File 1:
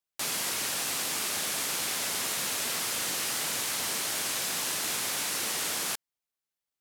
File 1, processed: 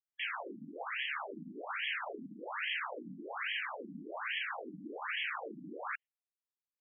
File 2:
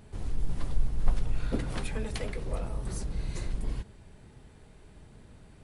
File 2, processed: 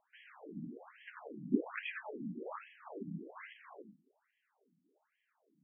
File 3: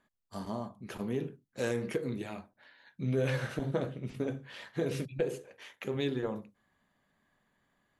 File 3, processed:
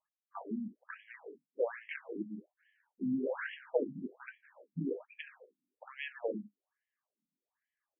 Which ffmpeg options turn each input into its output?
-af "agate=range=0.178:threshold=0.00501:ratio=16:detection=peak,afftfilt=real='re*between(b*sr/1024,210*pow(2400/210,0.5+0.5*sin(2*PI*1.2*pts/sr))/1.41,210*pow(2400/210,0.5+0.5*sin(2*PI*1.2*pts/sr))*1.41)':imag='im*between(b*sr/1024,210*pow(2400/210,0.5+0.5*sin(2*PI*1.2*pts/sr))/1.41,210*pow(2400/210,0.5+0.5*sin(2*PI*1.2*pts/sr))*1.41)':win_size=1024:overlap=0.75,volume=1.5"

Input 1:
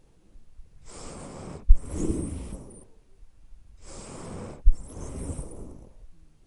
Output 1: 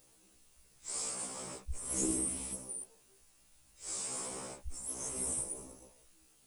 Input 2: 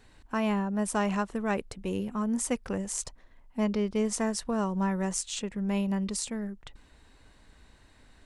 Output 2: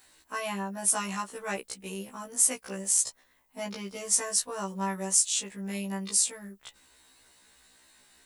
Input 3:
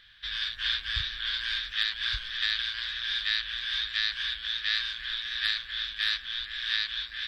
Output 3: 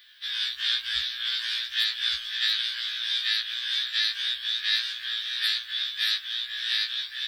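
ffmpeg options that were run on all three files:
-af "aemphasis=mode=production:type=riaa,afftfilt=real='re*1.73*eq(mod(b,3),0)':imag='im*1.73*eq(mod(b,3),0)':win_size=2048:overlap=0.75"

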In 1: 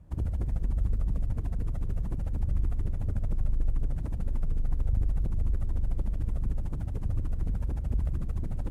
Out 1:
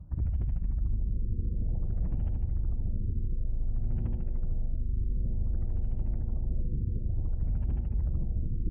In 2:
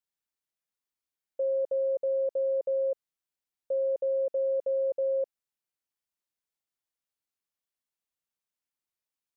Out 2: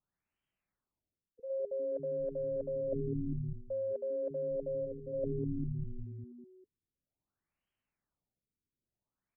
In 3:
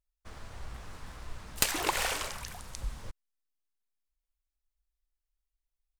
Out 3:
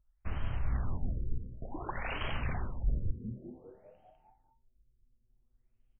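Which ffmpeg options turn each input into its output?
-filter_complex "[0:a]bandreject=f=480:w=12,acontrast=40,asplit=8[s0][s1][s2][s3][s4][s5][s6][s7];[s1]adelay=200,afreqshift=-130,volume=0.158[s8];[s2]adelay=400,afreqshift=-260,volume=0.104[s9];[s3]adelay=600,afreqshift=-390,volume=0.0668[s10];[s4]adelay=800,afreqshift=-520,volume=0.0437[s11];[s5]adelay=1000,afreqshift=-650,volume=0.0282[s12];[s6]adelay=1200,afreqshift=-780,volume=0.0184[s13];[s7]adelay=1400,afreqshift=-910,volume=0.0119[s14];[s0][s8][s9][s10][s11][s12][s13][s14]amix=inputs=8:normalize=0,areverse,acompressor=threshold=0.02:ratio=16,areverse,bass=f=250:g=9,treble=f=4000:g=14,afftfilt=real='re*lt(b*sr/1024,500*pow(3300/500,0.5+0.5*sin(2*PI*0.55*pts/sr)))':imag='im*lt(b*sr/1024,500*pow(3300/500,0.5+0.5*sin(2*PI*0.55*pts/sr)))':win_size=1024:overlap=0.75"

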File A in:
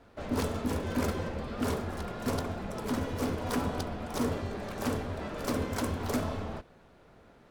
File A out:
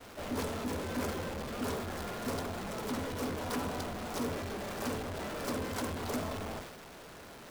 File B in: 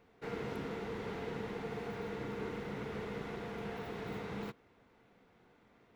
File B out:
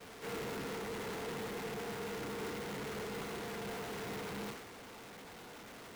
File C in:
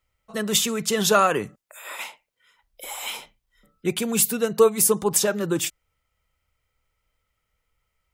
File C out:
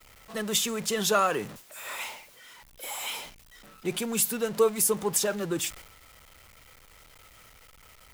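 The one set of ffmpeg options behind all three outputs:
-af "aeval=exprs='val(0)+0.5*0.0299*sgn(val(0))':c=same,agate=range=0.0224:threshold=0.0251:ratio=3:detection=peak,lowshelf=f=170:g=-5.5,volume=0.501"

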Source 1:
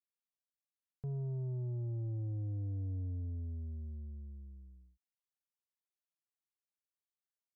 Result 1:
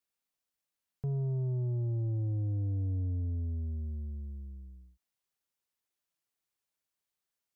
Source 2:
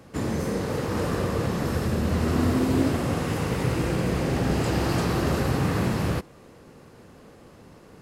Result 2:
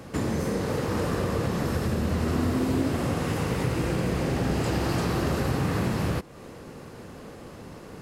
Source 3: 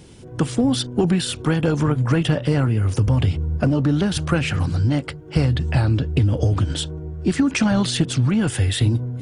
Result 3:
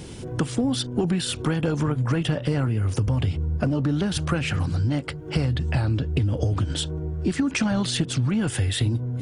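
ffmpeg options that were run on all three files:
-af "acompressor=threshold=0.0158:ratio=2,volume=2.11"

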